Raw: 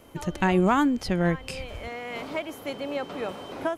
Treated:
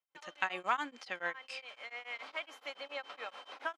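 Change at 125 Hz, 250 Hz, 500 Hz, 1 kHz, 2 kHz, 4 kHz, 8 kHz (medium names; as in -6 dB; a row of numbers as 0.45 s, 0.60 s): -37.0 dB, -28.0 dB, -17.0 dB, -9.5 dB, -5.0 dB, -6.5 dB, -13.5 dB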